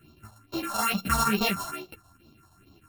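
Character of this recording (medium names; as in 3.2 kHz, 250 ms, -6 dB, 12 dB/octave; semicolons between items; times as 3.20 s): a buzz of ramps at a fixed pitch in blocks of 32 samples; phasing stages 4, 2.3 Hz, lowest notch 350–1800 Hz; chopped level 6.4 Hz, duty 90%; a shimmering, thickened sound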